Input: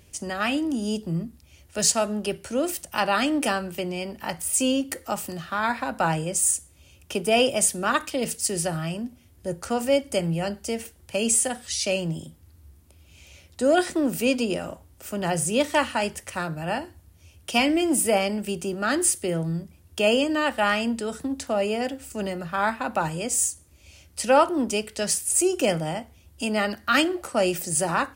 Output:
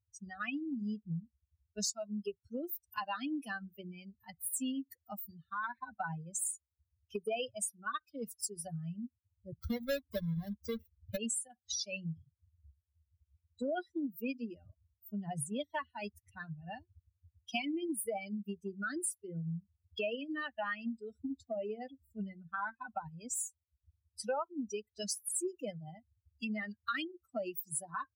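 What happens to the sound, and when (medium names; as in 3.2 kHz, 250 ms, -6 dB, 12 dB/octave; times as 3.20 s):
9.58–11.17 s: square wave that keeps the level
whole clip: expander on every frequency bin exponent 3; compression 5:1, threshold -44 dBFS; trim +7.5 dB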